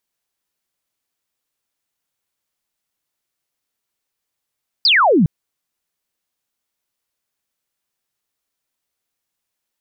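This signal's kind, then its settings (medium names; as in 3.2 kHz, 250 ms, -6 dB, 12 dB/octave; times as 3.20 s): laser zap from 5.1 kHz, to 140 Hz, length 0.41 s sine, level -9.5 dB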